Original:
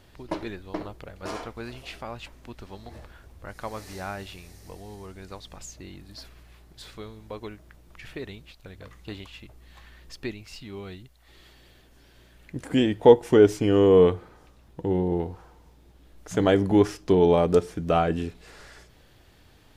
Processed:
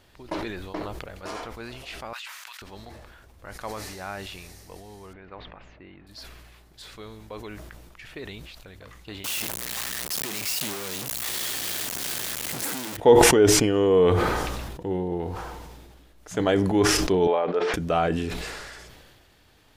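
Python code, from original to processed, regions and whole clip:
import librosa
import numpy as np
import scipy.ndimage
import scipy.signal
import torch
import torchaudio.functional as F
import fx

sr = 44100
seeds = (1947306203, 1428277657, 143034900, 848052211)

y = fx.chain(x, sr, fx.highpass(hz=1200.0, slope=24),
    fx.env_flatten(amount_pct=70), at=(2.13, 2.62))
y = fx.chain(y, sr, fx.lowpass(hz=2500.0, slope=24),
    fx.low_shelf(hz=140.0, db=-6.5), at=(5.13, 6.07))
y = fx.chain(y, sr, fx.clip_1bit(),
    fx.highpass(hz=120.0, slope=12),
    fx.high_shelf(hz=5000.0, db=10.5), at=(9.24, 12.97))
y = fx.chain(y, sr, fx.bandpass_edges(low_hz=490.0, high_hz=3000.0),
    fx.air_absorb(metres=110.0), at=(17.27, 17.74))
y = fx.low_shelf(y, sr, hz=390.0, db=-5.5)
y = fx.sustainer(y, sr, db_per_s=29.0)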